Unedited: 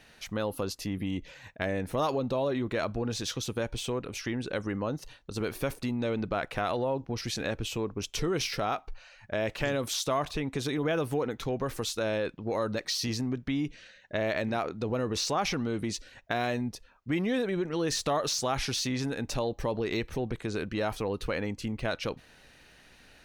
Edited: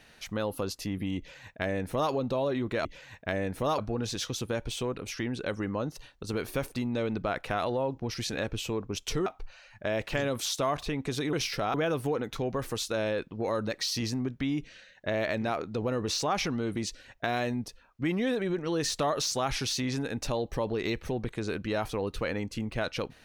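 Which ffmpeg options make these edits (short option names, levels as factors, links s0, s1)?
-filter_complex "[0:a]asplit=6[s0][s1][s2][s3][s4][s5];[s0]atrim=end=2.852[s6];[s1]atrim=start=1.178:end=2.112[s7];[s2]atrim=start=2.848:end=8.332[s8];[s3]atrim=start=8.738:end=10.812[s9];[s4]atrim=start=8.328:end=8.742[s10];[s5]atrim=start=10.808[s11];[s6][s7]acrossfade=d=0.004:c1=hsin:c2=hsin[s12];[s12][s8]acrossfade=d=0.004:c1=hsin:c2=hsin[s13];[s13][s9]acrossfade=d=0.004:c1=hsin:c2=hsin[s14];[s14][s10]acrossfade=d=0.004:c1=hsin:c2=hsin[s15];[s15][s11]acrossfade=d=0.004:c1=hsin:c2=hsin"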